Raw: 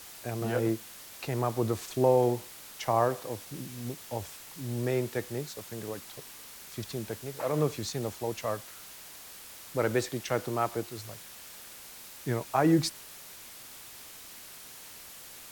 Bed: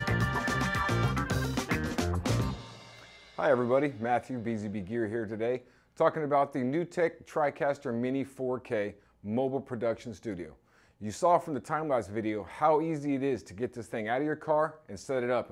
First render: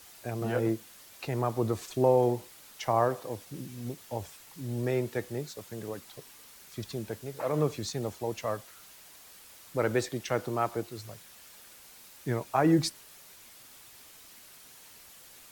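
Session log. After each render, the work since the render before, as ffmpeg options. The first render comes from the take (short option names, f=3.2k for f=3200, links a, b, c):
-af "afftdn=nr=6:nf=-48"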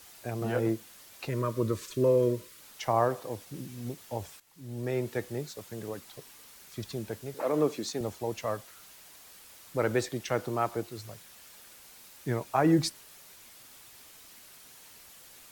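-filter_complex "[0:a]asettb=1/sr,asplit=3[a][b][c];[a]atrim=end=1.294[d];[b]atrim=start=1.29:end=2.61,asetpts=PTS-STARTPTS,afade=t=in:d=0.004:c=qsin,afade=t=out:st=1.316:d=0.004:c=qsin,asuperstop=centerf=770:order=12:qfactor=2.4[e];[c]atrim=start=2.606[f];[d][e]acrossfade=d=0.004:c1=hsin:c2=qsin[g];[g][f]acrossfade=d=0.004:c1=qsin:c2=hsin,asettb=1/sr,asplit=3[h][i][j];[h]atrim=end=7.344[k];[i]atrim=start=7.34:end=8.01,asetpts=PTS-STARTPTS,afade=t=in:d=0.004:c=qsin,afade=t=out:st=0.666:d=0.004:c=qsin,highpass=f=260:t=q:w=1.5[l];[j]atrim=start=8.006[m];[k][l]acrossfade=d=0.004:c1=hsin:c2=qsin[n];[n][m]acrossfade=d=0.004:c1=qsin:c2=hsin,asplit=2[o][p];[o]atrim=end=4.4,asetpts=PTS-STARTPTS,afade=t=out:st=4.396:d=0.004:c=hsin:silence=0.158489[q];[p]atrim=start=4.4,asetpts=PTS-STARTPTS,afade=t=in:d=0.71:silence=0.158489[r];[q][r]concat=n=2:v=0:a=1"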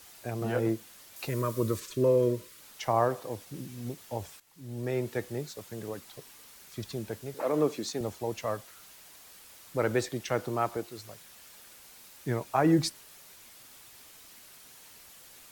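-filter_complex "[0:a]asettb=1/sr,asplit=3[a][b][c];[a]atrim=end=1.164[d];[b]atrim=start=1.16:end=1.8,asetpts=PTS-STARTPTS,afade=t=in:d=0.004:c=qsin,afade=t=out:st=0.636:d=0.004:c=qsin,highshelf=f=6.5k:g=9[e];[c]atrim=start=1.796[f];[d][e]acrossfade=d=0.004:c1=hsin:c2=qsin[g];[g][f]acrossfade=d=0.004:c1=qsin:c2=hsin,asettb=1/sr,asplit=3[h][i][j];[h]atrim=end=10.774[k];[i]atrim=start=10.77:end=11.21,asetpts=PTS-STARTPTS,afade=t=in:d=0.004:c=qsin,afade=t=out:st=0.436:d=0.004:c=qsin,equalizer=f=81:w=0.51:g=-7[l];[j]atrim=start=11.206[m];[k][l]acrossfade=d=0.004:c1=hsin:c2=qsin[n];[n][m]acrossfade=d=0.004:c1=qsin:c2=hsin"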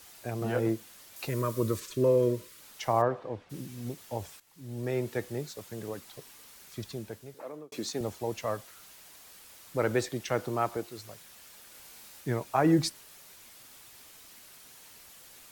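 -filter_complex "[0:a]asplit=3[a][b][c];[a]afade=t=out:st=3.01:d=0.02[d];[b]lowpass=2.4k,afade=t=in:st=3.01:d=0.02,afade=t=out:st=3.49:d=0.02[e];[c]afade=t=in:st=3.49:d=0.02[f];[d][e][f]amix=inputs=3:normalize=0,asettb=1/sr,asplit=3[g][h][i];[g]atrim=end=11.724[j];[h]atrim=start=11.72:end=12.21,asetpts=PTS-STARTPTS,afade=t=in:d=0.004:c=qsin,afade=t=out:st=0.486:d=0.004:c=qsin,asplit=2[k][l];[l]adelay=24,volume=-3dB[m];[k][m]amix=inputs=2:normalize=0,atrim=end_sample=21609[n];[i]atrim=start=12.206[o];[j][n]acrossfade=d=0.004:c1=hsin:c2=qsin[p];[p][o]acrossfade=d=0.004:c1=qsin:c2=hsin,asplit=2[q][r];[q]atrim=end=7.72,asetpts=PTS-STARTPTS,afade=t=out:st=6.72:d=1[s];[r]atrim=start=7.72,asetpts=PTS-STARTPTS,afade=t=in:d=0.004:c=hsin[t];[s][t]concat=n=2:v=0:a=1"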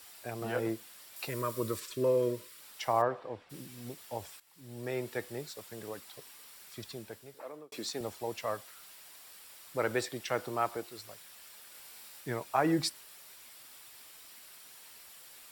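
-af "lowshelf=f=380:g=-9.5,bandreject=f=6.4k:w=8.3"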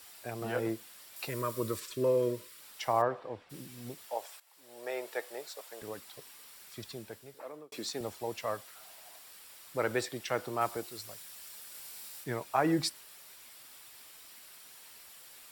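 -filter_complex "[0:a]asettb=1/sr,asplit=3[a][b][c];[a]atrim=end=4.084[d];[b]atrim=start=4.08:end=5.82,asetpts=PTS-STARTPTS,afade=t=in:d=0.004:c=qsin,afade=t=out:st=1.736:d=0.004:c=qsin,highpass=f=600:t=q:w=1.6[e];[c]atrim=start=5.816[f];[d][e]acrossfade=d=0.004:c1=hsin:c2=qsin[g];[g][f]acrossfade=d=0.004:c1=qsin:c2=hsin,asettb=1/sr,asplit=3[h][i][j];[h]atrim=end=8.754[k];[i]atrim=start=8.75:end=9.19,asetpts=PTS-STARTPTS,afade=t=in:d=0.004:c=qsin,afade=t=out:st=0.436:d=0.004:c=qsin,equalizer=f=700:t=o:w=0.56:g=12.5[l];[j]atrim=start=9.186[m];[k][l]acrossfade=d=0.004:c1=hsin:c2=qsin[n];[n][m]acrossfade=d=0.004:c1=qsin:c2=hsin,asettb=1/sr,asplit=3[o][p][q];[o]atrim=end=10.614[r];[p]atrim=start=10.61:end=12.24,asetpts=PTS-STARTPTS,afade=t=in:d=0.004:c=qsin,afade=t=out:st=1.626:d=0.004:c=qsin,bass=f=250:g=3,treble=f=4k:g=5[s];[q]atrim=start=12.236[t];[r][s]acrossfade=d=0.004:c1=hsin:c2=qsin[u];[u][t]acrossfade=d=0.004:c1=qsin:c2=hsin"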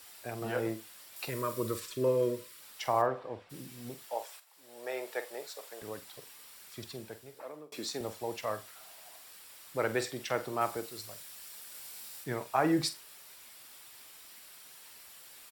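-filter_complex "[0:a]asplit=2[a][b];[b]adelay=46,volume=-12dB[c];[a][c]amix=inputs=2:normalize=0,aecho=1:1:85:0.0668"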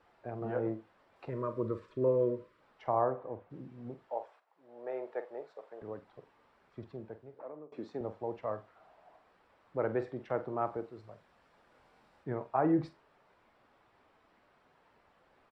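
-af "lowpass=1k"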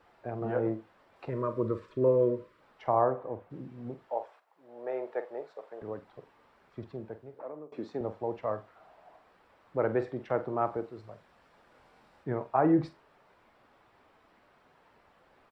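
-af "volume=4dB"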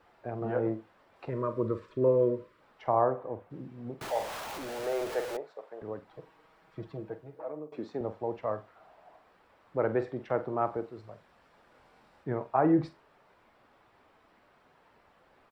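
-filter_complex "[0:a]asettb=1/sr,asplit=3[a][b][c];[a]atrim=end=4.014[d];[b]atrim=start=4.01:end=5.37,asetpts=PTS-STARTPTS,afade=t=in:d=0.004:c=qsin,afade=t=out:st=1.356:d=0.004:c=qsin,aeval=exprs='val(0)+0.5*0.0211*sgn(val(0))':c=same[e];[c]atrim=start=5.366[f];[d][e]acrossfade=d=0.004:c1=hsin:c2=qsin[g];[g][f]acrossfade=d=0.004:c1=qsin:c2=hsin,asettb=1/sr,asplit=3[h][i][j];[h]atrim=end=6.104[k];[i]atrim=start=6.1:end=7.76,asetpts=PTS-STARTPTS,afade=t=in:d=0.004:c=qsin,afade=t=out:st=1.656:d=0.004:c=qsin,aecho=1:1:6.3:0.74,atrim=end_sample=73206[l];[j]atrim=start=7.756[m];[k][l]acrossfade=d=0.004:c1=hsin:c2=qsin[n];[n][m]acrossfade=d=0.004:c1=qsin:c2=hsin"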